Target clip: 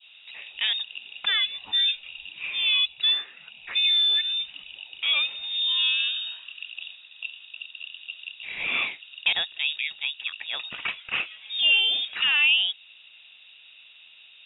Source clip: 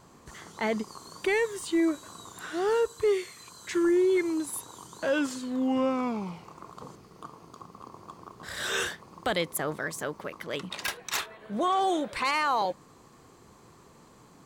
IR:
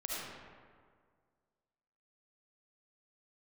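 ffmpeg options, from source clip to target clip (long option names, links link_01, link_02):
-af "adynamicequalizer=threshold=0.00891:dfrequency=1900:dqfactor=0.72:tfrequency=1900:tqfactor=0.72:attack=5:release=100:ratio=0.375:range=1.5:mode=cutabove:tftype=bell,lowpass=frequency=3300:width_type=q:width=0.5098,lowpass=frequency=3300:width_type=q:width=0.6013,lowpass=frequency=3300:width_type=q:width=0.9,lowpass=frequency=3300:width_type=q:width=2.563,afreqshift=-3900,equalizer=frequency=2600:width=5.3:gain=13.5"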